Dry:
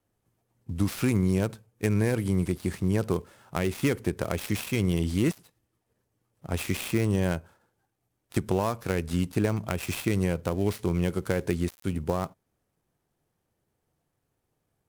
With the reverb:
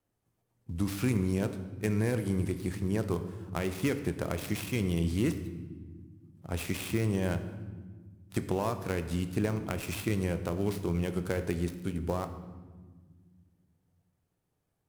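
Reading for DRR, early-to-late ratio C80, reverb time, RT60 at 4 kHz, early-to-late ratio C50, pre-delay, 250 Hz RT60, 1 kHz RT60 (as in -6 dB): 9.0 dB, 12.5 dB, 1.5 s, 1.0 s, 11.0 dB, 21 ms, 2.7 s, 1.3 s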